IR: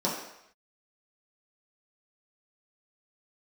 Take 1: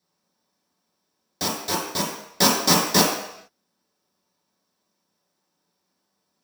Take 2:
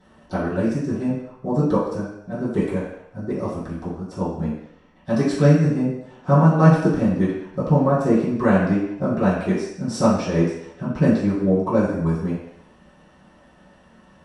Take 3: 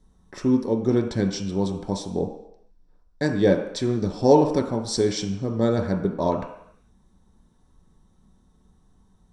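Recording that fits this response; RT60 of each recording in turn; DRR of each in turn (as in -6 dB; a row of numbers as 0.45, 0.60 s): 1; 0.75, 0.75, 0.75 s; -6.5, -14.5, 1.5 dB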